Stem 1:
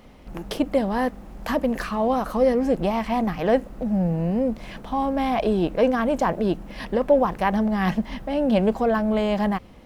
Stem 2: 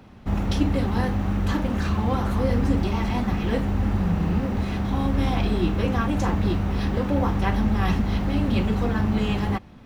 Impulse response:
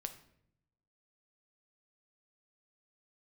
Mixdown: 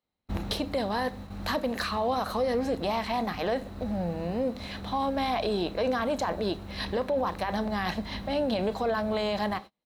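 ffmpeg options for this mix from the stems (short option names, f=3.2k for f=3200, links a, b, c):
-filter_complex "[0:a]highpass=f=530:p=1,alimiter=limit=-20dB:level=0:latency=1:release=11,volume=-4dB,asplit=3[a][b][c];[b]volume=-3.5dB[d];[1:a]volume=-1,adelay=26,volume=-7.5dB[e];[c]apad=whole_len=435818[f];[e][f]sidechaincompress=threshold=-40dB:ratio=12:attack=16:release=861[g];[2:a]atrim=start_sample=2205[h];[d][h]afir=irnorm=-1:irlink=0[i];[a][g][i]amix=inputs=3:normalize=0,agate=range=-35dB:threshold=-40dB:ratio=16:detection=peak,equalizer=f=4k:t=o:w=0.22:g=14"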